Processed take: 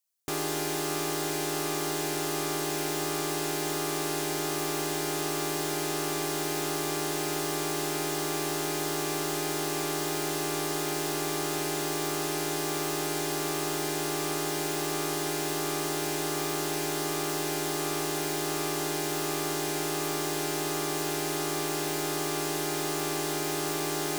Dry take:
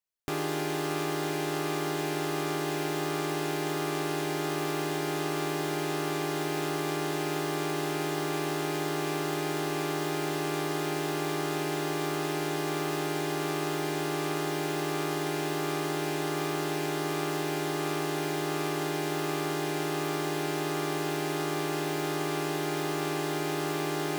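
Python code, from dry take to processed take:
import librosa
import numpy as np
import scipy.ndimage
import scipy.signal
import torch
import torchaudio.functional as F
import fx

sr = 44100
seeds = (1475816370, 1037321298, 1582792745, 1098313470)

y = fx.bass_treble(x, sr, bass_db=-3, treble_db=11)
y = np.clip(10.0 ** (23.0 / 20.0) * y, -1.0, 1.0) / 10.0 ** (23.0 / 20.0)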